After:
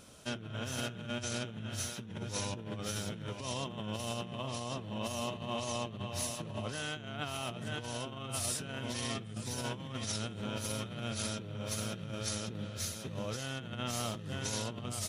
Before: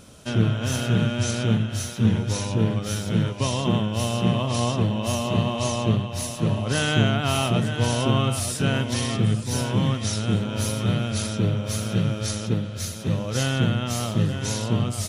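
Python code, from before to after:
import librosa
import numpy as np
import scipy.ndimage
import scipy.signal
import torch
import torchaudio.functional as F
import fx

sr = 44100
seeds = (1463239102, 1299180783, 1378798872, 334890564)

y = fx.over_compress(x, sr, threshold_db=-27.0, ratio=-1.0)
y = fx.low_shelf(y, sr, hz=310.0, db=-6.0)
y = y * 10.0 ** (-9.0 / 20.0)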